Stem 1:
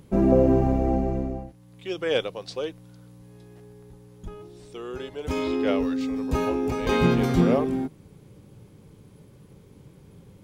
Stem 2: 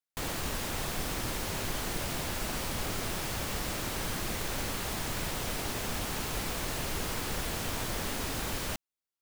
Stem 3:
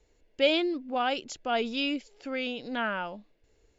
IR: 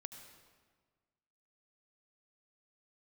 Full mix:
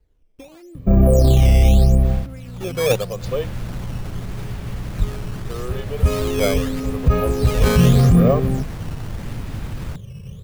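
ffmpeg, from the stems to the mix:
-filter_complex "[0:a]aecho=1:1:1.7:0.81,adelay=750,volume=1.12,asplit=2[s0][s1];[s1]volume=0.224[s2];[1:a]alimiter=level_in=1.68:limit=0.0631:level=0:latency=1:release=116,volume=0.596,adelay=1200,volume=1.19[s3];[2:a]acompressor=threshold=0.02:ratio=12,volume=0.376,asplit=3[s4][s5][s6];[s5]volume=0.355[s7];[s6]apad=whole_len=459473[s8];[s3][s8]sidechaincompress=threshold=0.00126:ratio=12:attack=8.1:release=115[s9];[3:a]atrim=start_sample=2205[s10];[s2][s7]amix=inputs=2:normalize=0[s11];[s11][s10]afir=irnorm=-1:irlink=0[s12];[s0][s9][s4][s12]amix=inputs=4:normalize=0,bass=f=250:g=13,treble=f=4000:g=-9,acrusher=samples=9:mix=1:aa=0.000001:lfo=1:lforange=14.4:lforate=0.81,alimiter=limit=0.501:level=0:latency=1:release=14"

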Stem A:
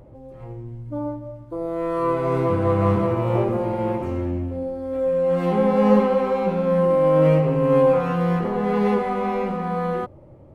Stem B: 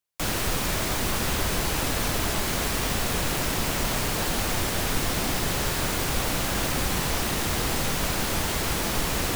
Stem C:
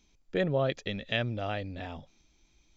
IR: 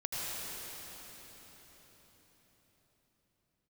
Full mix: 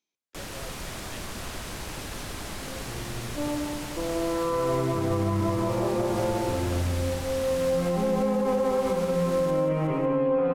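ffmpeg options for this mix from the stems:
-filter_complex "[0:a]lowpass=3200,adelay=2450,volume=0.708,asplit=2[s0][s1];[s1]volume=0.631[s2];[1:a]lowpass=12000,adelay=150,volume=0.282,asplit=2[s3][s4];[s4]volume=0.501[s5];[2:a]highpass=330,volume=0.15[s6];[s2][s5]amix=inputs=2:normalize=0,aecho=0:1:183|366|549|732|915|1098:1|0.42|0.176|0.0741|0.0311|0.0131[s7];[s0][s3][s6][s7]amix=inputs=4:normalize=0,alimiter=limit=0.141:level=0:latency=1:release=151"

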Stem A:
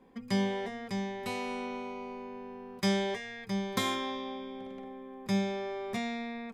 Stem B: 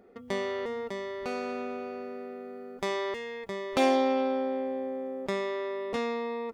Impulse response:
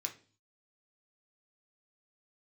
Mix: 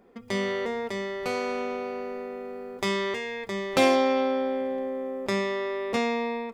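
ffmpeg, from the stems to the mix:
-filter_complex "[0:a]volume=0.75[s0];[1:a]dynaudnorm=f=120:g=5:m=2,volume=0.668,asplit=2[s1][s2];[s2]volume=0.562[s3];[2:a]atrim=start_sample=2205[s4];[s3][s4]afir=irnorm=-1:irlink=0[s5];[s0][s1][s5]amix=inputs=3:normalize=0"

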